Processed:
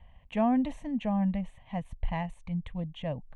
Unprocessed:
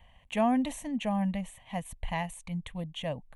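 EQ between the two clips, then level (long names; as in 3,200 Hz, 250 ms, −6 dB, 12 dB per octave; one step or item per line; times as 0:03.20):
head-to-tape spacing loss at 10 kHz 22 dB
low-shelf EQ 160 Hz +6 dB
0.0 dB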